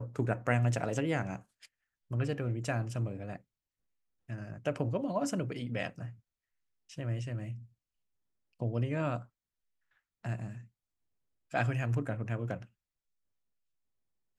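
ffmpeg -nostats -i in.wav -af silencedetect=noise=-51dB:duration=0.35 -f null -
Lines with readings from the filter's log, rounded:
silence_start: 1.66
silence_end: 2.11 | silence_duration: 0.45
silence_start: 3.37
silence_end: 4.29 | silence_duration: 0.92
silence_start: 6.15
silence_end: 6.89 | silence_duration: 0.75
silence_start: 7.66
silence_end: 8.60 | silence_duration: 0.95
silence_start: 9.26
silence_end: 10.25 | silence_duration: 0.99
silence_start: 10.66
silence_end: 11.51 | silence_duration: 0.86
silence_start: 12.65
silence_end: 14.38 | silence_duration: 1.73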